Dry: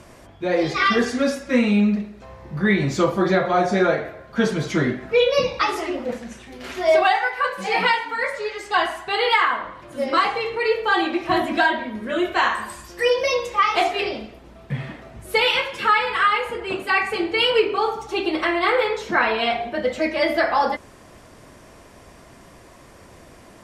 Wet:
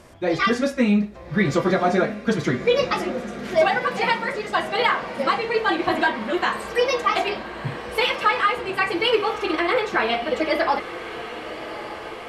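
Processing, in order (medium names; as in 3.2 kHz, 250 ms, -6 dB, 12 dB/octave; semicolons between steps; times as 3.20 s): time stretch by phase-locked vocoder 0.52×; echo that smears into a reverb 1205 ms, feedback 67%, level -13 dB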